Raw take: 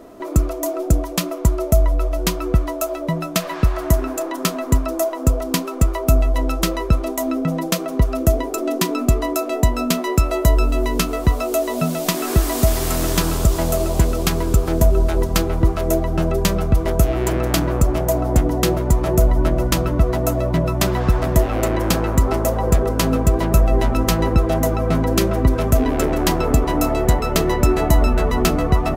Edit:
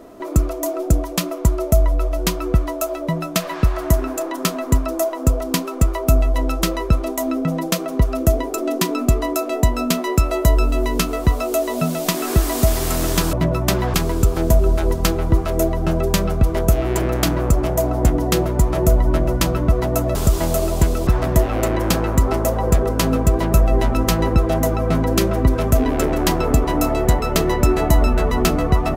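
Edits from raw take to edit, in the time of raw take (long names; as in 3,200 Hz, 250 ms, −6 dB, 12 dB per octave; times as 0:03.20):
0:13.33–0:14.25: swap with 0:20.46–0:21.07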